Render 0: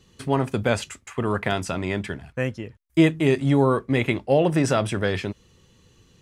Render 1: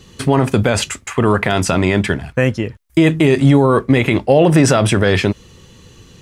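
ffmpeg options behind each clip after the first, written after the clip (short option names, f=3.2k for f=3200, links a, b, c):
-af "alimiter=level_in=14.5dB:limit=-1dB:release=50:level=0:latency=1,volume=-1dB"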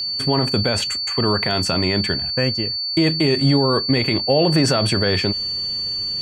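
-af "areverse,acompressor=mode=upward:threshold=-27dB:ratio=2.5,areverse,aeval=exprs='val(0)+0.158*sin(2*PI*4500*n/s)':c=same,volume=-6dB"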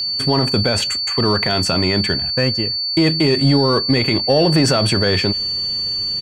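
-filter_complex "[0:a]asplit=2[a][b];[b]adelay=160,highpass=300,lowpass=3.4k,asoftclip=type=hard:threshold=-15.5dB,volume=-30dB[c];[a][c]amix=inputs=2:normalize=0,acontrast=37,volume=-2.5dB"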